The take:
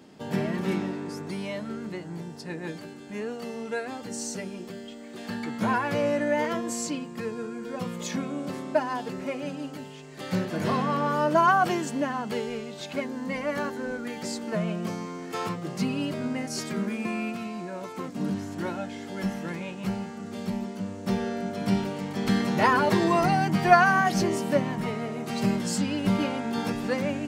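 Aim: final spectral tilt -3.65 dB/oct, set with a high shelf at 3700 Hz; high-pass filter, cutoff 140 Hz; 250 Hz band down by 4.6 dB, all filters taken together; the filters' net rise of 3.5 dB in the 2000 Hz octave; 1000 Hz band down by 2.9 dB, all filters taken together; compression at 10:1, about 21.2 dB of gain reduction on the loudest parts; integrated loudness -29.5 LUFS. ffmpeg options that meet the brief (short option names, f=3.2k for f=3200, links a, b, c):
-af "highpass=140,equalizer=f=250:t=o:g=-5,equalizer=f=1k:t=o:g=-5.5,equalizer=f=2k:t=o:g=6,highshelf=f=3.7k:g=4.5,acompressor=threshold=-35dB:ratio=10,volume=9.5dB"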